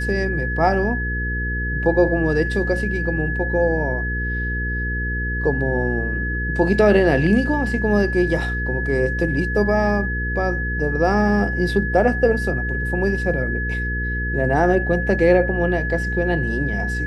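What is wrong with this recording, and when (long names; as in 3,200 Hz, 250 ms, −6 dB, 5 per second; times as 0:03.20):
mains hum 60 Hz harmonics 8 −25 dBFS
whistle 1,700 Hz −25 dBFS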